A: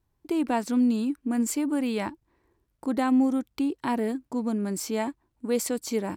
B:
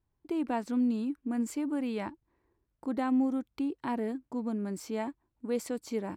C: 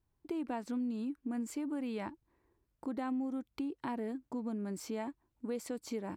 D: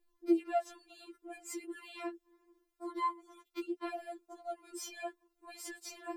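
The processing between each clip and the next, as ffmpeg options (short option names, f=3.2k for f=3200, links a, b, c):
-af "highshelf=f=4.2k:g=-9.5,volume=-5.5dB"
-af "acompressor=threshold=-36dB:ratio=3"
-af "afftfilt=real='re*4*eq(mod(b,16),0)':imag='im*4*eq(mod(b,16),0)':win_size=2048:overlap=0.75,volume=6dB"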